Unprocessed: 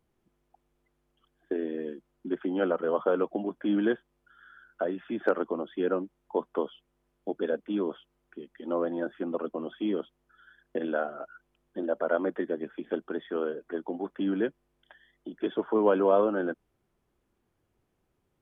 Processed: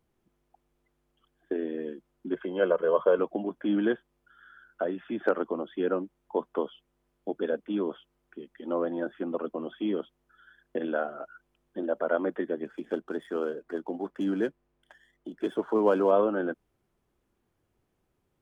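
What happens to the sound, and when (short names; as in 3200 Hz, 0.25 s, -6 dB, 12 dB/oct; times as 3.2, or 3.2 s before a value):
2.34–3.19 comb 1.9 ms
12.65–16.11 median filter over 9 samples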